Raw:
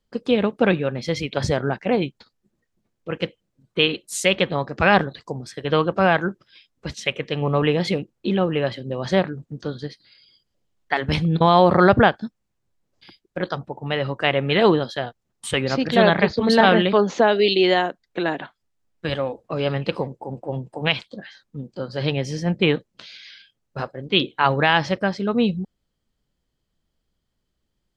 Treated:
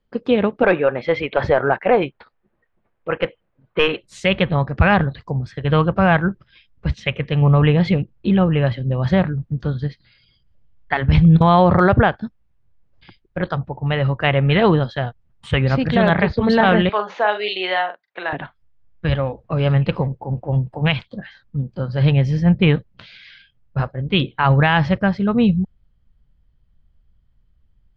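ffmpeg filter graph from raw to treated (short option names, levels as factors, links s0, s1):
-filter_complex "[0:a]asettb=1/sr,asplit=3[s0][s1][s2];[s0]atrim=end=0.634[s3];[s1]atrim=start=0.63:end=4.01,asetpts=PTS-STARTPTS,afade=t=in:d=0.004:c=qsin,afade=t=out:st=3.376:d=0.004:c=qsin,bass=f=250:g=-12,treble=f=4000:g=-8,acontrast=69,asplit=2[s4][s5];[s5]highpass=f=720:p=1,volume=2.51,asoftclip=type=tanh:threshold=0.75[s6];[s4][s6]amix=inputs=2:normalize=0,lowpass=f=1400:p=1,volume=0.501[s7];[s2]atrim=start=4.006[s8];[s3][s7]acrossfade=d=0.004:c1=hsin:c2=qsin[s9];[s9][s8]acrossfade=d=0.004:c1=qsin:c2=hsin,asettb=1/sr,asplit=3[s10][s11][s12];[s10]atrim=end=16.894[s13];[s11]atrim=start=16.89:end=18.33,asetpts=PTS-STARTPTS,afade=t=in:d=0.004:c=qsin,afade=t=out:st=1.436:d=0.004:c=qsin,highpass=720,highshelf=f=6600:g=-9.5,asplit=2[s14][s15];[s15]adelay=43,volume=0.376[s16];[s14][s16]amix=inputs=2:normalize=0,atrim=end_sample=63504[s17];[s12]atrim=start=18.326[s18];[s13][s17]acrossfade=d=0.004:c1=hsin:c2=qsin[s19];[s19][s18]acrossfade=d=0.004:c1=qsin:c2=hsin,lowpass=2700,asubboost=boost=7:cutoff=120,alimiter=level_in=2.24:limit=0.891:release=50:level=0:latency=1,volume=0.668"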